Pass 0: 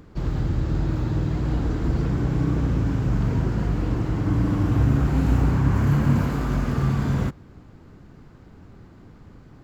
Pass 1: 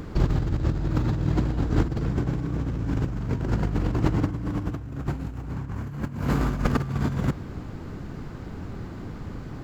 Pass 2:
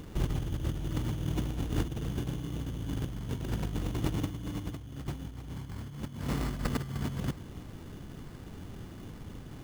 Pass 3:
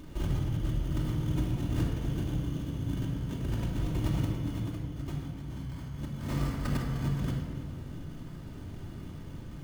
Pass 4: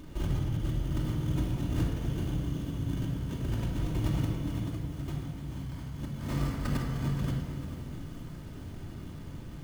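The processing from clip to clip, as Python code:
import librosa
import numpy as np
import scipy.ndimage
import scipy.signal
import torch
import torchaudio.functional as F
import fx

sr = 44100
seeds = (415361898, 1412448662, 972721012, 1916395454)

y1 = fx.over_compress(x, sr, threshold_db=-27.0, ratio=-0.5)
y1 = y1 * librosa.db_to_amplitude(3.5)
y2 = fx.sample_hold(y1, sr, seeds[0], rate_hz=3200.0, jitter_pct=0)
y2 = y2 * librosa.db_to_amplitude(-8.5)
y3 = fx.room_shoebox(y2, sr, seeds[1], volume_m3=2200.0, walls='mixed', distance_m=2.7)
y3 = y3 * librosa.db_to_amplitude(-5.0)
y4 = fx.echo_crushed(y3, sr, ms=439, feedback_pct=55, bits=8, wet_db=-13.0)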